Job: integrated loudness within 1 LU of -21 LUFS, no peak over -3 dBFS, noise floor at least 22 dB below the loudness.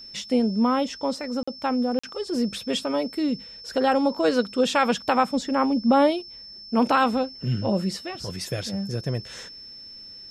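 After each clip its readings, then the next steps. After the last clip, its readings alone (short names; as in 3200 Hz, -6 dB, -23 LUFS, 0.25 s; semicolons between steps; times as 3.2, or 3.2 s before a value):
dropouts 2; longest dropout 45 ms; steady tone 5300 Hz; tone level -40 dBFS; loudness -24.5 LUFS; peak -8.5 dBFS; loudness target -21.0 LUFS
-> interpolate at 1.43/1.99, 45 ms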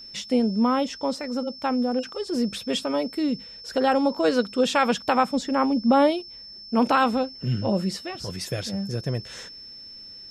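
dropouts 0; steady tone 5300 Hz; tone level -40 dBFS
-> notch 5300 Hz, Q 30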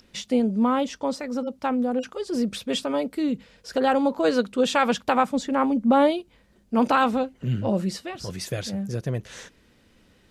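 steady tone none; loudness -24.5 LUFS; peak -8.5 dBFS; loudness target -21.0 LUFS
-> gain +3.5 dB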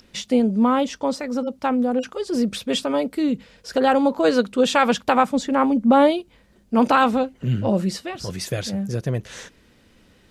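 loudness -21.0 LUFS; peak -5.0 dBFS; noise floor -56 dBFS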